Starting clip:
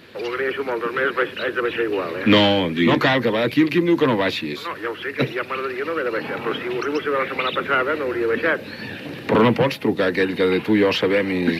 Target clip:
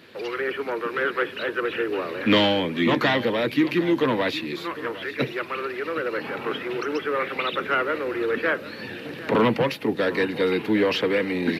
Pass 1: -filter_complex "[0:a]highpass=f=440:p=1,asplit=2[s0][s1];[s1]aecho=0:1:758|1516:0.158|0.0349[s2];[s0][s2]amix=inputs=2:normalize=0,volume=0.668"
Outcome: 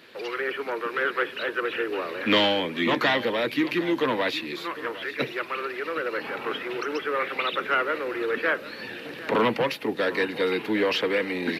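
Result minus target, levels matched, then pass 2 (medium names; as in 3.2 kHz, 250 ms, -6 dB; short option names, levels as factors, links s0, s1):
125 Hz band -5.5 dB
-filter_complex "[0:a]highpass=f=120:p=1,asplit=2[s0][s1];[s1]aecho=0:1:758|1516:0.158|0.0349[s2];[s0][s2]amix=inputs=2:normalize=0,volume=0.668"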